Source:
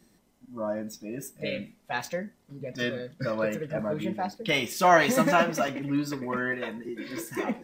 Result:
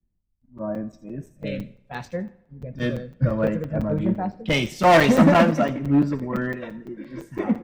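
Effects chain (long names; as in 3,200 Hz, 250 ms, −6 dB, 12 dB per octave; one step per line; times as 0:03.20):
RIAA equalisation playback
downsampling to 32,000 Hz
gain into a clipping stage and back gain 16 dB
delay with a high-pass on its return 83 ms, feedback 33%, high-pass 4,400 Hz, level −9 dB
spring reverb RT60 1.5 s, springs 31/59 ms, chirp 55 ms, DRR 16 dB
regular buffer underruns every 0.17 s, samples 256, zero, from 0:00.41
multiband upward and downward expander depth 100%
level +1.5 dB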